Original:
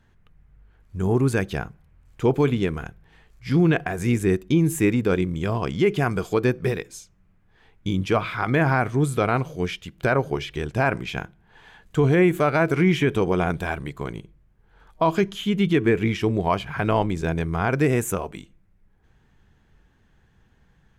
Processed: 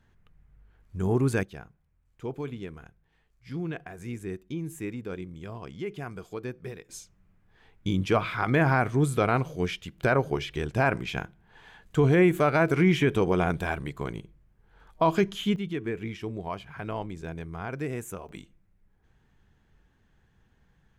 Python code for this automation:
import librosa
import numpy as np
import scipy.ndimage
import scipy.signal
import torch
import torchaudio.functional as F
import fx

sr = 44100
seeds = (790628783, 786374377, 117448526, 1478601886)

y = fx.gain(x, sr, db=fx.steps((0.0, -4.0), (1.43, -15.0), (6.89, -2.5), (15.56, -12.5), (18.29, -5.0)))